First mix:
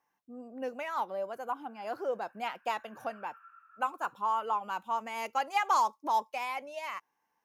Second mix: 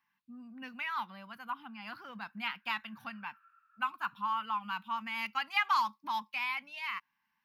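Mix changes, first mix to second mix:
background −10.0 dB
master: add drawn EQ curve 140 Hz 0 dB, 210 Hz +5 dB, 410 Hz −25 dB, 610 Hz −23 dB, 1,000 Hz −2 dB, 1,500 Hz +2 dB, 2,600 Hz +6 dB, 4,700 Hz +3 dB, 6,800 Hz −15 dB, 13,000 Hz −2 dB

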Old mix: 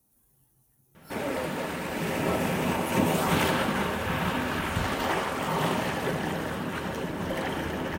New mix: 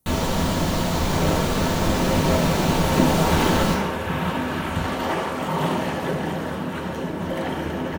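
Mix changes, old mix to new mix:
first sound: unmuted
second sound: send +8.5 dB

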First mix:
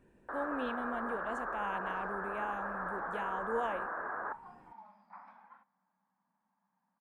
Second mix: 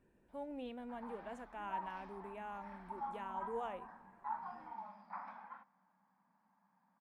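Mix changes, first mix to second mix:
speech −7.0 dB
first sound: muted
second sound +5.5 dB

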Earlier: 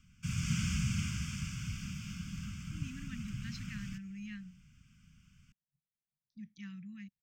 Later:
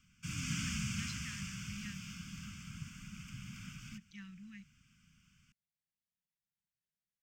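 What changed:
speech: entry −2.45 s
master: add low-shelf EQ 190 Hz −10 dB

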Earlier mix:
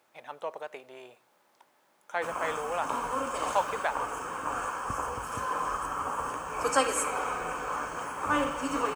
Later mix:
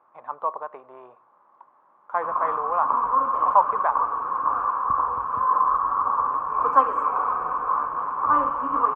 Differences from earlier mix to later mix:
background: send off
master: add low-pass with resonance 1,100 Hz, resonance Q 8

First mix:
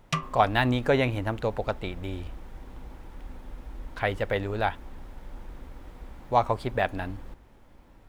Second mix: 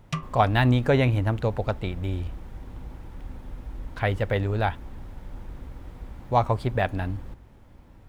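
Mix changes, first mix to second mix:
background −5.0 dB
master: add parametric band 100 Hz +8.5 dB 2.1 octaves

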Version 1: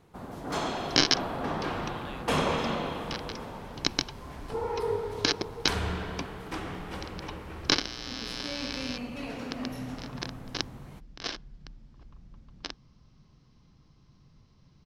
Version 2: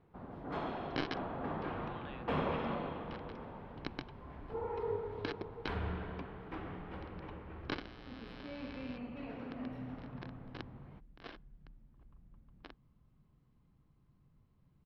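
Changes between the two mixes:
first sound −6.0 dB
second sound −9.0 dB
master: add high-frequency loss of the air 450 metres

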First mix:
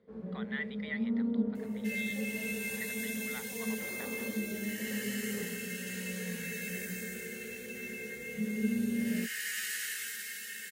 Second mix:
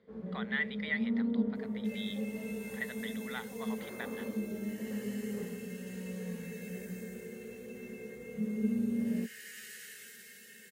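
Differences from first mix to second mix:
speech +5.0 dB
second sound −11.5 dB

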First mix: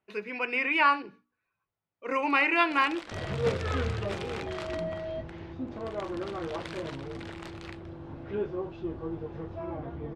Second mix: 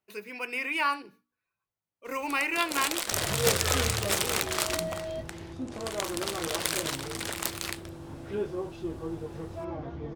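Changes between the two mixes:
speech −5.0 dB
first sound +8.0 dB
master: remove low-pass filter 3,000 Hz 12 dB per octave

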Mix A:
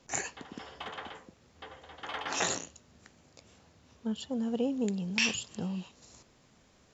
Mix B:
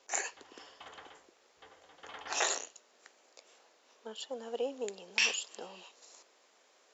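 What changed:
speech: add high-pass filter 410 Hz 24 dB per octave
background −9.5 dB

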